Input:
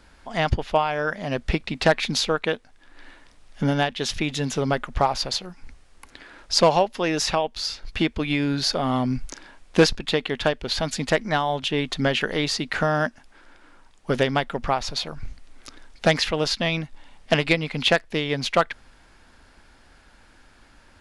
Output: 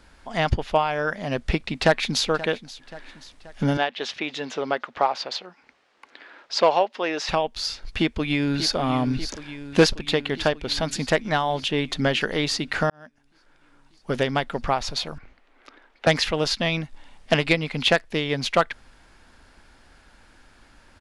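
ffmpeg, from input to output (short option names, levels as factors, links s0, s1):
-filter_complex "[0:a]asplit=2[s0][s1];[s1]afade=t=in:st=1.73:d=0.01,afade=t=out:st=2.26:d=0.01,aecho=0:1:530|1060|1590|2120|2650:0.133352|0.0733437|0.040339|0.0221865|0.0122026[s2];[s0][s2]amix=inputs=2:normalize=0,asettb=1/sr,asplit=3[s3][s4][s5];[s3]atrim=end=3.774[s6];[s4]atrim=start=3.77:end=7.29,asetpts=PTS-STARTPTS,afade=t=in:d=0.004:c=qsin,afade=t=out:st=3.516:d=0.004:c=qsin,highpass=380,lowpass=3900[s7];[s5]atrim=start=7.286[s8];[s6][s7]acrossfade=d=0.004:c1=hsin:c2=qsin[s9];[s9][s8]acrossfade=d=0.004:c1=qsin:c2=hsin,asplit=2[s10][s11];[s11]afade=t=in:st=7.88:d=0.01,afade=t=out:st=8.75:d=0.01,aecho=0:1:590|1180|1770|2360|2950|3540|4130|4720|5310|5900:0.281838|0.197287|0.138101|0.0966705|0.0676694|0.0473686|0.033158|0.0232106|0.0162474|0.0113732[s12];[s10][s12]amix=inputs=2:normalize=0,asettb=1/sr,asplit=3[s13][s14][s15];[s13]atrim=end=15.184[s16];[s14]atrim=start=15.18:end=16.07,asetpts=PTS-STARTPTS,afade=t=in:d=0.004:c=qsin,afade=t=out:st=0.886:d=0.004:c=qsin,acrossover=split=280 3200:gain=0.126 1 0.1[s17][s18][s19];[s17][s18][s19]amix=inputs=3:normalize=0[s20];[s15]atrim=start=16.066[s21];[s16][s20]acrossfade=d=0.004:c1=hsin:c2=qsin[s22];[s22][s21]acrossfade=d=0.004:c1=qsin:c2=hsin,asplit=2[s23][s24];[s23]atrim=end=12.9,asetpts=PTS-STARTPTS,afade=t=out:st=12.896:d=0.004:c=hsin[s25];[s24]atrim=start=12.9,asetpts=PTS-STARTPTS,afade=t=in:d=1.67[s26];[s25][s26]concat=n=2:v=0:a=1"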